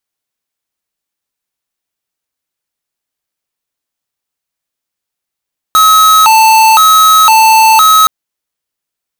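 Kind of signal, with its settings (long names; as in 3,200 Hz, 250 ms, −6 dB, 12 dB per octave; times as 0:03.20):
siren hi-lo 885–1,280 Hz 0.98 per second square −5 dBFS 2.32 s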